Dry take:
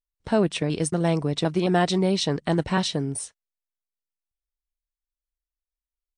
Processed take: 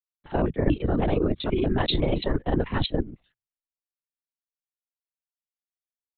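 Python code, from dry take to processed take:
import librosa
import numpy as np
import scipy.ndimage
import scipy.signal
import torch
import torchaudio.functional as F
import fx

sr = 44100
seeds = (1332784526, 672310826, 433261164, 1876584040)

y = fx.dereverb_blind(x, sr, rt60_s=0.76)
y = fx.hum_notches(y, sr, base_hz=60, count=2)
y = fx.level_steps(y, sr, step_db=14)
y = fx.granulator(y, sr, seeds[0], grain_ms=68.0, per_s=22.0, spray_ms=43.0, spread_st=0)
y = fx.lpc_vocoder(y, sr, seeds[1], excitation='whisper', order=16)
y = fx.band_widen(y, sr, depth_pct=70)
y = y * 10.0 ** (8.0 / 20.0)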